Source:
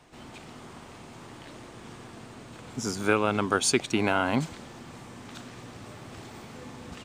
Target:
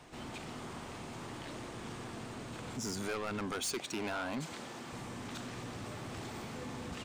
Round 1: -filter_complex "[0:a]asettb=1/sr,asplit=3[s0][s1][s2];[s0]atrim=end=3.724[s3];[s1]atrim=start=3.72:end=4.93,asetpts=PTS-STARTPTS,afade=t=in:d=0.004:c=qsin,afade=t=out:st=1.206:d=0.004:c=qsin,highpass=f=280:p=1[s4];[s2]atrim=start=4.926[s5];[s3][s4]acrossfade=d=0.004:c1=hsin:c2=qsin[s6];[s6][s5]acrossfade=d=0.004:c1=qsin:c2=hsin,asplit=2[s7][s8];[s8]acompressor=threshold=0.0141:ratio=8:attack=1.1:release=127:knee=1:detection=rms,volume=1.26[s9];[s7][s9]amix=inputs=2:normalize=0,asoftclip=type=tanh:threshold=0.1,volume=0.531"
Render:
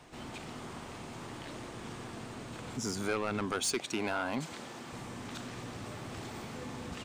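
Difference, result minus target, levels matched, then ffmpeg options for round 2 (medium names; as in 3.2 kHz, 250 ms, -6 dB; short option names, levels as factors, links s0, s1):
saturation: distortion -5 dB
-filter_complex "[0:a]asettb=1/sr,asplit=3[s0][s1][s2];[s0]atrim=end=3.724[s3];[s1]atrim=start=3.72:end=4.93,asetpts=PTS-STARTPTS,afade=t=in:d=0.004:c=qsin,afade=t=out:st=1.206:d=0.004:c=qsin,highpass=f=280:p=1[s4];[s2]atrim=start=4.926[s5];[s3][s4]acrossfade=d=0.004:c1=hsin:c2=qsin[s6];[s6][s5]acrossfade=d=0.004:c1=qsin:c2=hsin,asplit=2[s7][s8];[s8]acompressor=threshold=0.0141:ratio=8:attack=1.1:release=127:knee=1:detection=rms,volume=1.26[s9];[s7][s9]amix=inputs=2:normalize=0,asoftclip=type=tanh:threshold=0.0422,volume=0.531"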